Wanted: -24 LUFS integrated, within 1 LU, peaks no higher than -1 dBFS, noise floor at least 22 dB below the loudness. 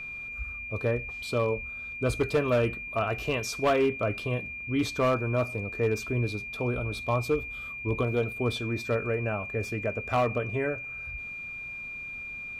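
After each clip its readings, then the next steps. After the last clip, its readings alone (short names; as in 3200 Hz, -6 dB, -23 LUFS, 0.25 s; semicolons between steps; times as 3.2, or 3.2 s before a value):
clipped 0.5%; flat tops at -18.5 dBFS; steady tone 2400 Hz; tone level -36 dBFS; loudness -29.5 LUFS; peak -18.5 dBFS; loudness target -24.0 LUFS
-> clip repair -18.5 dBFS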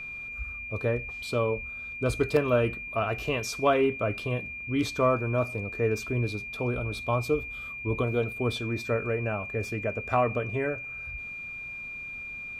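clipped 0.0%; steady tone 2400 Hz; tone level -36 dBFS
-> notch 2400 Hz, Q 30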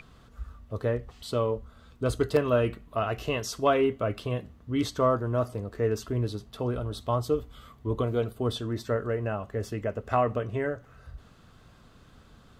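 steady tone none; loudness -29.5 LUFS; peak -10.5 dBFS; loudness target -24.0 LUFS
-> gain +5.5 dB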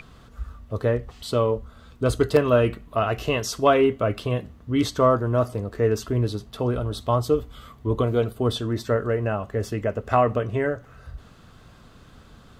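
loudness -24.0 LUFS; peak -5.0 dBFS; noise floor -50 dBFS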